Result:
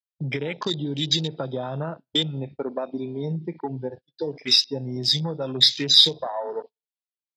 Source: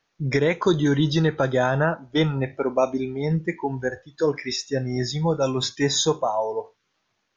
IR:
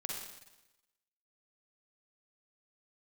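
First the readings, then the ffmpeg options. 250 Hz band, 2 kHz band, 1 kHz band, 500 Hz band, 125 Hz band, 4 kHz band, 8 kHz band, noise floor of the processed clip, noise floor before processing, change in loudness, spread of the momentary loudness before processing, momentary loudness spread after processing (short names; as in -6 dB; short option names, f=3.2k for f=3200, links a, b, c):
-6.0 dB, -8.5 dB, -7.5 dB, -7.5 dB, -5.5 dB, +11.0 dB, n/a, under -85 dBFS, -74 dBFS, +1.0 dB, 7 LU, 17 LU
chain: -filter_complex "[0:a]aresample=11025,aresample=44100,bass=f=250:g=3,treble=f=4k:g=1,asplit=2[a][b];[b]aecho=0:1:63|126|189|252:0.0708|0.0418|0.0246|0.0145[c];[a][c]amix=inputs=2:normalize=0,acompressor=threshold=-23dB:ratio=16,aemphasis=mode=reproduction:type=cd,aexciter=amount=10.8:drive=5.1:freq=2.7k,agate=range=-29dB:threshold=-35dB:ratio=16:detection=peak,highpass=f=120:w=0.5412,highpass=f=120:w=1.3066,afwtdn=0.0316,volume=-1.5dB"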